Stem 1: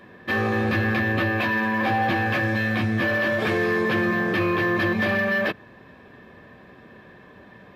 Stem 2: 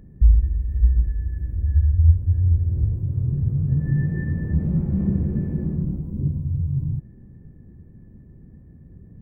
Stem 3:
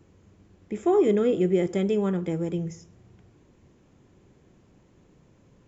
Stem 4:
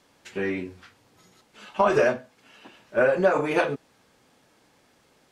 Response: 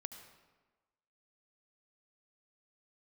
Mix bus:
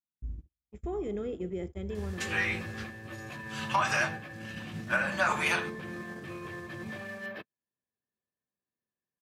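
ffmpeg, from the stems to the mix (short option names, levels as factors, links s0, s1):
-filter_complex "[0:a]alimiter=limit=0.0708:level=0:latency=1:release=387,adelay=1900,volume=1.19[s0];[1:a]bandpass=f=260:t=q:w=1.8:csg=0,volume=0.562,asplit=2[s1][s2];[s2]volume=0.1[s3];[2:a]volume=0.266,asplit=2[s4][s5];[s5]volume=0.398[s6];[3:a]highpass=f=880:w=0.5412,highpass=f=880:w=1.3066,highshelf=f=2600:g=9,alimiter=limit=0.119:level=0:latency=1:release=415,adelay=1950,volume=1.26[s7];[s0][s1][s4]amix=inputs=3:normalize=0,alimiter=level_in=2.11:limit=0.0631:level=0:latency=1:release=92,volume=0.473,volume=1[s8];[4:a]atrim=start_sample=2205[s9];[s3][s6]amix=inputs=2:normalize=0[s10];[s10][s9]afir=irnorm=-1:irlink=0[s11];[s7][s8][s11]amix=inputs=3:normalize=0,agate=range=0.00251:threshold=0.0158:ratio=16:detection=peak"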